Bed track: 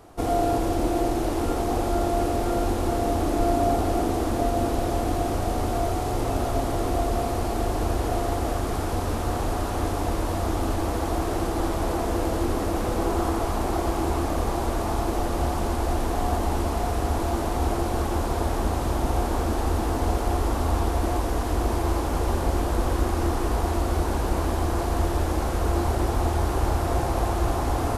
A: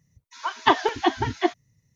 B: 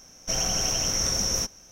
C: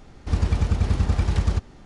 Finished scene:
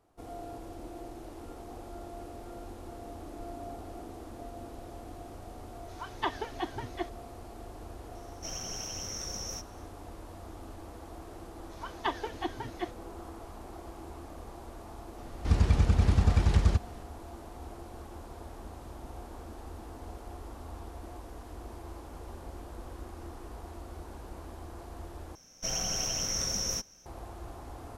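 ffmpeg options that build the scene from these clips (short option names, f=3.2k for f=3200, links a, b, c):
-filter_complex "[1:a]asplit=2[a][b];[2:a]asplit=2[c][d];[0:a]volume=-20dB,asplit=2[e][f];[e]atrim=end=25.354[g];[d]atrim=end=1.71,asetpts=PTS-STARTPTS,volume=-6.5dB[h];[f]atrim=start=27.056[i];[a]atrim=end=1.95,asetpts=PTS-STARTPTS,volume=-14dB,afade=t=in:d=0.004:c=hsin,afade=t=out:st=1.946:d=0.004:c=hsin,adelay=5560[j];[c]atrim=end=1.71,asetpts=PTS-STARTPTS,volume=-13.5dB,afade=t=in:d=0.004:c=hsin,afade=t=out:st=1.706:d=0.004:c=hsin,adelay=8150[k];[b]atrim=end=1.95,asetpts=PTS-STARTPTS,volume=-14dB,afade=t=in:d=0.004:c=hsin,afade=t=out:st=1.946:d=0.004:c=hsin,adelay=501858S[l];[3:a]atrim=end=1.85,asetpts=PTS-STARTPTS,volume=-2.5dB,afade=t=in:d=0.004:c=hsin,afade=t=out:st=1.846:d=0.004:c=hsin,adelay=15180[m];[g][h]acrossfade=d=0.004:c1=hsin:c2=hsin[n];[n][i]acrossfade=d=0.004:c1=hsin:c2=hsin[o];[o][j][k][l][m]amix=inputs=5:normalize=0"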